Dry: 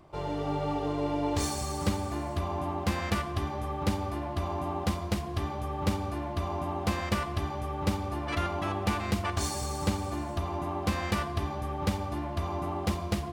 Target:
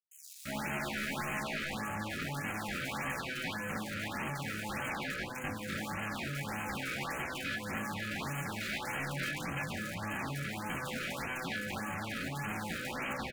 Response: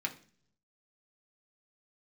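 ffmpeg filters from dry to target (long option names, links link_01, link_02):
-filter_complex "[0:a]equalizer=frequency=8500:width_type=o:width=0.42:gain=-9.5,asplit=2[link_01][link_02];[link_02]alimiter=limit=-23.5dB:level=0:latency=1:release=435,volume=1.5dB[link_03];[link_01][link_03]amix=inputs=2:normalize=0,aeval=exprs='(mod(11.2*val(0)+1,2)-1)/11.2':channel_layout=same,asetrate=64194,aresample=44100,atempo=0.686977,acrusher=bits=4:mix=0:aa=0.000001,adynamicsmooth=sensitivity=6:basefreq=600,asoftclip=type=hard:threshold=-29.5dB,acrossover=split=5200[link_04][link_05];[link_04]adelay=340[link_06];[link_06][link_05]amix=inputs=2:normalize=0[link_07];[1:a]atrim=start_sample=2205,atrim=end_sample=3528[link_08];[link_07][link_08]afir=irnorm=-1:irlink=0,afftfilt=real='re*(1-between(b*sr/1024,830*pow(4600/830,0.5+0.5*sin(2*PI*1.7*pts/sr))/1.41,830*pow(4600/830,0.5+0.5*sin(2*PI*1.7*pts/sr))*1.41))':imag='im*(1-between(b*sr/1024,830*pow(4600/830,0.5+0.5*sin(2*PI*1.7*pts/sr))/1.41,830*pow(4600/830,0.5+0.5*sin(2*PI*1.7*pts/sr))*1.41))':win_size=1024:overlap=0.75,volume=-5.5dB"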